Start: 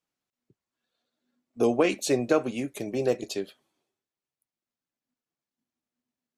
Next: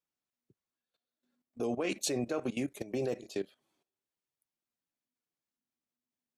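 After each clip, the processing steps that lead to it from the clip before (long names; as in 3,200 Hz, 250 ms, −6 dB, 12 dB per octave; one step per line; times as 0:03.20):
output level in coarse steps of 16 dB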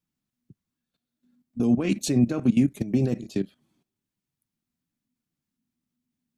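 low shelf with overshoot 320 Hz +13 dB, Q 1.5
level +3 dB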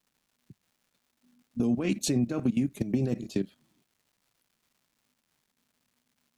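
downward compressor 5 to 1, threshold −23 dBFS, peak gain reduction 8.5 dB
surface crackle 400 per second −59 dBFS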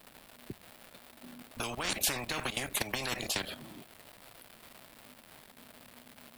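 graphic EQ with 15 bands 160 Hz −3 dB, 630 Hz +6 dB, 6,300 Hz −10 dB
every bin compressed towards the loudest bin 10 to 1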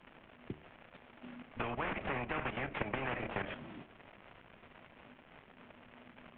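variable-slope delta modulation 16 kbit/s
treble cut that deepens with the level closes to 2,500 Hz, closed at −35 dBFS
hum removal 74.9 Hz, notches 10
level +1 dB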